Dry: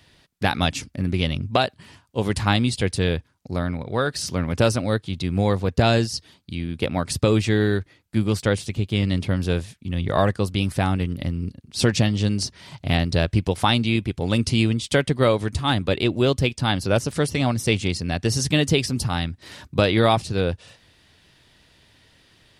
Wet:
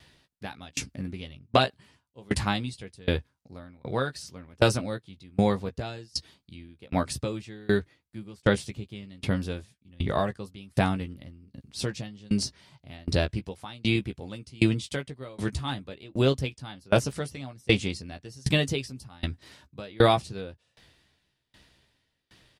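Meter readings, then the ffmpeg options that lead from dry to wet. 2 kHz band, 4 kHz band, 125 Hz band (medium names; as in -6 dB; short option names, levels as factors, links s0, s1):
-6.5 dB, -7.5 dB, -9.0 dB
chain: -filter_complex "[0:a]asplit=2[s0][s1];[s1]adelay=15,volume=0.447[s2];[s0][s2]amix=inputs=2:normalize=0,aeval=exprs='val(0)*pow(10,-29*if(lt(mod(1.3*n/s,1),2*abs(1.3)/1000),1-mod(1.3*n/s,1)/(2*abs(1.3)/1000),(mod(1.3*n/s,1)-2*abs(1.3)/1000)/(1-2*abs(1.3)/1000))/20)':c=same"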